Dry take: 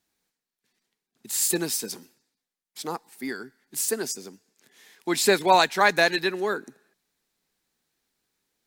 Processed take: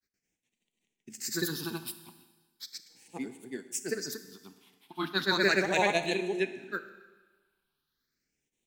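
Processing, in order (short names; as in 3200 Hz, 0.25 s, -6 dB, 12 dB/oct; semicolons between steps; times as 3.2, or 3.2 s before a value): grains, grains 24/s, spray 0.256 s, pitch spread up and down by 0 st; phaser stages 6, 0.37 Hz, lowest notch 450–1400 Hz; Schroeder reverb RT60 1.3 s, combs from 25 ms, DRR 11 dB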